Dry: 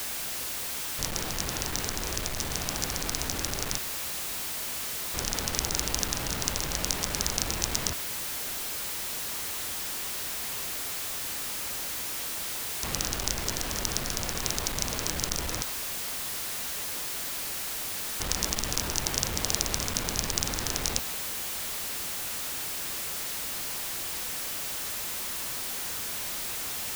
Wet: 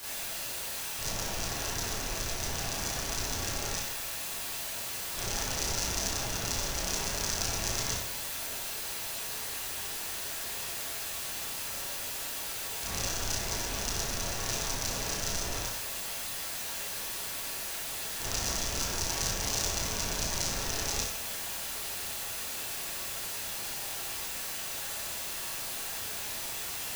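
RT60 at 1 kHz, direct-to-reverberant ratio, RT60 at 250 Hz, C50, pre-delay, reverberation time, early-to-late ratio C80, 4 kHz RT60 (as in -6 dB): 0.65 s, -9.5 dB, 0.65 s, 0.5 dB, 28 ms, 0.65 s, 5.5 dB, 0.60 s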